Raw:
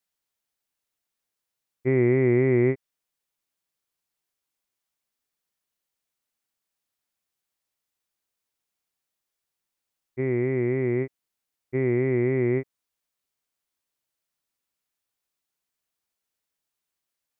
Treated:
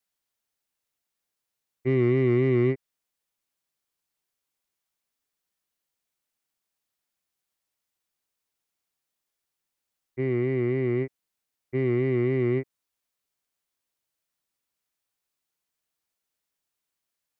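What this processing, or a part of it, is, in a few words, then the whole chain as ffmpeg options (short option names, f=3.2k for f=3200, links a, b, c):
one-band saturation: -filter_complex "[0:a]acrossover=split=360|2200[a][b][c];[b]asoftclip=type=tanh:threshold=-28dB[d];[a][d][c]amix=inputs=3:normalize=0"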